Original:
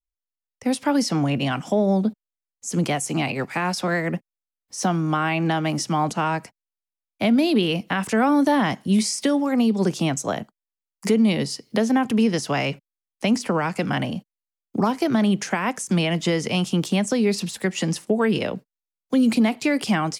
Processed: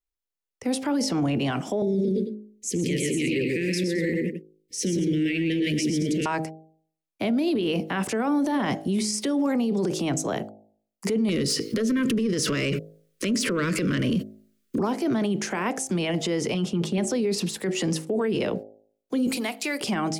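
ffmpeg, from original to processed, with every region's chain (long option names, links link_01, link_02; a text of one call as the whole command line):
ffmpeg -i in.wav -filter_complex "[0:a]asettb=1/sr,asplit=3[link_01][link_02][link_03];[link_01]atrim=end=1.824[link_04];[link_02]atrim=start=1.82:end=6.26,asetpts=PTS-STARTPTS,afade=type=in:duration=0.004:curve=qsin,afade=type=out:start_time=4.436:duration=0.004:curve=qsin,asuperstop=centerf=970:order=12:qfactor=0.67,equalizer=frequency=930:width_type=o:width=2.1:gain=6,aecho=1:1:107|123|217:0.316|0.708|0.251,atrim=end_sample=195804[link_05];[link_03]atrim=start=6.256[link_06];[link_04][link_05]acrossfade=duration=0.004:curve1=hsin:curve2=qsin[link_07];[link_07][link_06]acrossfade=duration=0.004:curve1=qsin:curve2=hsin,asettb=1/sr,asplit=3[link_08][link_09][link_10];[link_08]atrim=end=11.294[link_11];[link_09]atrim=start=11.29:end=14.79,asetpts=PTS-STARTPTS,afade=type=in:duration=0.004:curve=qsin,afade=type=out:start_time=3.496:duration=0.004:curve=qsin,acompressor=threshold=-30dB:ratio=12:attack=3.2:release=140:knee=1:detection=peak,aeval=exprs='0.237*sin(PI/2*5.01*val(0)/0.237)':channel_layout=same,asuperstop=centerf=800:order=4:qfactor=1.2[link_12];[link_10]atrim=start=14.786[link_13];[link_11][link_12]acrossfade=duration=0.004:curve1=hsin:curve2=qsin[link_14];[link_14][link_13]acrossfade=duration=0.004:curve1=qsin:curve2=hsin,asettb=1/sr,asplit=3[link_15][link_16][link_17];[link_15]atrim=end=16.544[link_18];[link_16]atrim=start=16.54:end=16.98,asetpts=PTS-STARTPTS,afade=type=in:duration=0.004:curve=qsin,afade=type=out:start_time=0.436:duration=0.004:curve=qsin,agate=range=-33dB:threshold=-32dB:ratio=3:release=100:detection=peak,lowpass=frequency=2900:poles=1,aecho=1:1:4.9:0.99,atrim=end_sample=19404[link_19];[link_17]atrim=start=16.976[link_20];[link_18][link_19]acrossfade=duration=0.004:curve1=hsin:curve2=qsin[link_21];[link_21][link_20]acrossfade=duration=0.004:curve1=qsin:curve2=hsin,asettb=1/sr,asplit=3[link_22][link_23][link_24];[link_22]atrim=end=19.274[link_25];[link_23]atrim=start=19.27:end=19.81,asetpts=PTS-STARTPTS,afade=type=in:duration=0.004:curve=qsin,afade=type=out:start_time=0.536:duration=0.004:curve=qsin,highpass=frequency=1300:poles=1,highshelf=frequency=9900:gain=10.5,acrusher=bits=9:mode=log:mix=0:aa=0.000001[link_26];[link_24]atrim=start=19.806[link_27];[link_25][link_26]acrossfade=duration=0.004:curve1=hsin:curve2=qsin[link_28];[link_28][link_27]acrossfade=duration=0.004:curve1=qsin:curve2=hsin,equalizer=frequency=380:width_type=o:width=0.79:gain=8,bandreject=frequency=52.93:width_type=h:width=4,bandreject=frequency=105.86:width_type=h:width=4,bandreject=frequency=158.79:width_type=h:width=4,bandreject=frequency=211.72:width_type=h:width=4,bandreject=frequency=264.65:width_type=h:width=4,bandreject=frequency=317.58:width_type=h:width=4,bandreject=frequency=370.51:width_type=h:width=4,bandreject=frequency=423.44:width_type=h:width=4,bandreject=frequency=476.37:width_type=h:width=4,bandreject=frequency=529.3:width_type=h:width=4,bandreject=frequency=582.23:width_type=h:width=4,bandreject=frequency=635.16:width_type=h:width=4,bandreject=frequency=688.09:width_type=h:width=4,bandreject=frequency=741.02:width_type=h:width=4,bandreject=frequency=793.95:width_type=h:width=4,bandreject=frequency=846.88:width_type=h:width=4,alimiter=limit=-18dB:level=0:latency=1:release=12" out.wav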